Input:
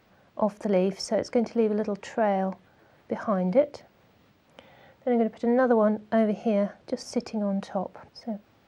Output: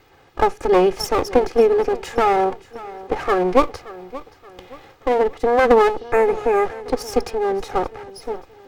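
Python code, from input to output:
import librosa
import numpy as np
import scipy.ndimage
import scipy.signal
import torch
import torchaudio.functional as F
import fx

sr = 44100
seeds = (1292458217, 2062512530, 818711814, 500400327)

p1 = fx.lower_of_two(x, sr, delay_ms=2.4)
p2 = fx.spec_repair(p1, sr, seeds[0], start_s=5.99, length_s=0.64, low_hz=2700.0, high_hz=6300.0, source='both')
p3 = p2 + fx.echo_feedback(p2, sr, ms=576, feedback_pct=41, wet_db=-18.0, dry=0)
y = F.gain(torch.from_numpy(p3), 9.0).numpy()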